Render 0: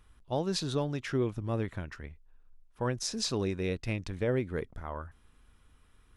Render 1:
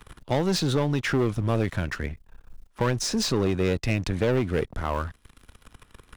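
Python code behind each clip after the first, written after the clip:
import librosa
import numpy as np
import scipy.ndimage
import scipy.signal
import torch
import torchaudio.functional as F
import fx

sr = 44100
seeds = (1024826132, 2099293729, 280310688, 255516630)

y = fx.leveller(x, sr, passes=3)
y = fx.band_squash(y, sr, depth_pct=40)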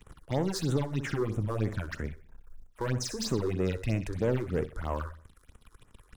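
y = fx.echo_feedback(x, sr, ms=63, feedback_pct=37, wet_db=-11.5)
y = fx.phaser_stages(y, sr, stages=6, low_hz=170.0, high_hz=4600.0, hz=3.1, feedback_pct=25)
y = y * librosa.db_to_amplitude(-5.0)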